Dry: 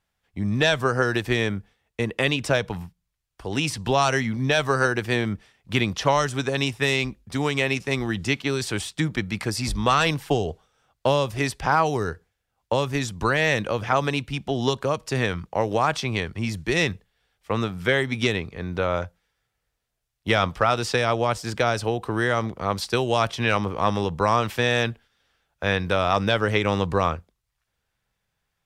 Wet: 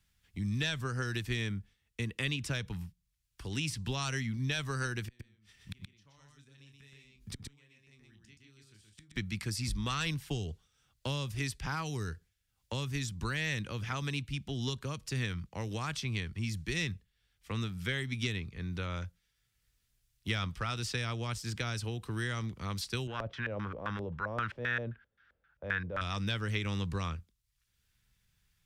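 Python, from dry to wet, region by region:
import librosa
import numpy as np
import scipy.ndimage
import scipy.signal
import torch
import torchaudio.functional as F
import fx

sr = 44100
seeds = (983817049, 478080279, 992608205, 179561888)

y = fx.chain(x, sr, fx.doubler(ms=28.0, db=-7),
    fx.gate_flip(shuts_db=-23.0, range_db=-38),
    fx.echo_single(ms=124, db=-3.0), at=(5.07, 9.16))
y = fx.chain(y, sr, fx.tilt_eq(slope=2.0),
    fx.transient(attack_db=-6, sustain_db=3),
    fx.filter_lfo_lowpass(shape='square', hz=3.8, low_hz=570.0, high_hz=1500.0, q=5.4), at=(23.07, 26.01))
y = fx.tone_stack(y, sr, knobs='6-0-2')
y = fx.band_squash(y, sr, depth_pct=40)
y = y * librosa.db_to_amplitude(7.5)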